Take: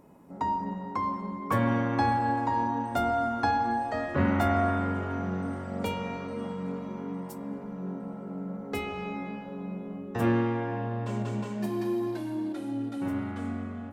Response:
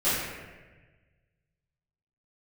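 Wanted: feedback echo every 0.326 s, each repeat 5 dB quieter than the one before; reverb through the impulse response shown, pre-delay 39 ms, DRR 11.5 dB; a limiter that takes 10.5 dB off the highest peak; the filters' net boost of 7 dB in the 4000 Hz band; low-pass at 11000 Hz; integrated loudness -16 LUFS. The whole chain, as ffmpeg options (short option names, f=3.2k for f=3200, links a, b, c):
-filter_complex "[0:a]lowpass=11k,equalizer=f=4k:t=o:g=9,alimiter=limit=-23dB:level=0:latency=1,aecho=1:1:326|652|978|1304|1630|1956|2282:0.562|0.315|0.176|0.0988|0.0553|0.031|0.0173,asplit=2[a][b];[1:a]atrim=start_sample=2205,adelay=39[c];[b][c]afir=irnorm=-1:irlink=0,volume=-25dB[d];[a][d]amix=inputs=2:normalize=0,volume=14.5dB"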